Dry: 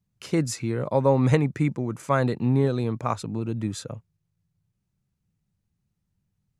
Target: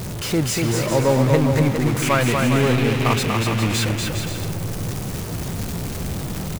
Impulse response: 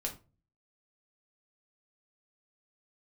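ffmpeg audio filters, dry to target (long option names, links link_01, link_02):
-filter_complex "[0:a]aeval=exprs='val(0)+0.5*0.075*sgn(val(0))':channel_layout=same,asettb=1/sr,asplit=3[link_01][link_02][link_03];[link_01]atrim=end=2.024[link_04];[link_02]atrim=start=2.02:end=3.86,asetpts=PTS-STARTPTS,afade=type=in:duration=0.004:curve=qsin,afade=type=out:start_time=1.836:duration=0.004:curve=qsin,equalizer=frequency=2500:width_type=o:width=0.94:gain=11.5[link_05];[link_03]atrim=start=3.856[link_06];[link_04][link_05]acrossfade=duration=0.004:curve1=hsin:curve2=qsin[link_07];[link_07][link_06]acrossfade=duration=0.004:curve1=qsin:curve2=hsin,aecho=1:1:240|408|525.6|607.9|665.5:0.631|0.398|0.251|0.158|0.1"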